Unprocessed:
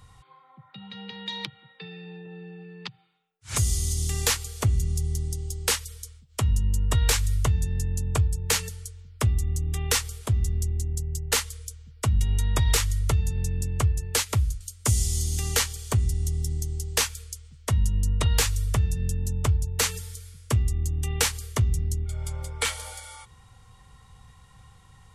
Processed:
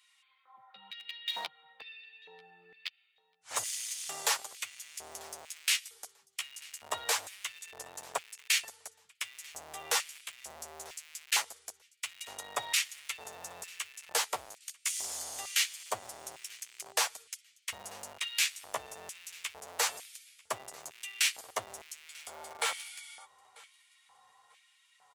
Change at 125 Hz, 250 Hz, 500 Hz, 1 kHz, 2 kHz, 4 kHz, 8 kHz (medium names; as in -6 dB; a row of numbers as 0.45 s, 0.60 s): under -40 dB, -25.0 dB, -9.0 dB, -3.5 dB, -2.5 dB, -3.5 dB, -6.0 dB